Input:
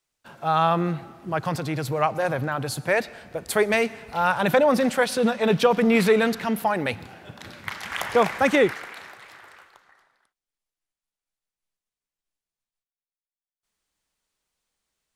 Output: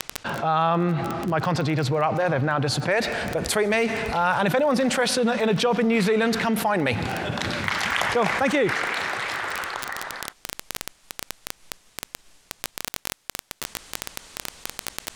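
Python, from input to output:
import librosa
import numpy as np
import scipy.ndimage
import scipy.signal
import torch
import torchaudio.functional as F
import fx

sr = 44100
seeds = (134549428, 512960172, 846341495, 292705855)

y = fx.lowpass(x, sr, hz=fx.steps((0.0, 5300.0), (2.91, 9300.0)), slope=12)
y = fx.dmg_crackle(y, sr, seeds[0], per_s=16.0, level_db=-32.0)
y = fx.env_flatten(y, sr, amount_pct=70)
y = F.gain(torch.from_numpy(y), -5.0).numpy()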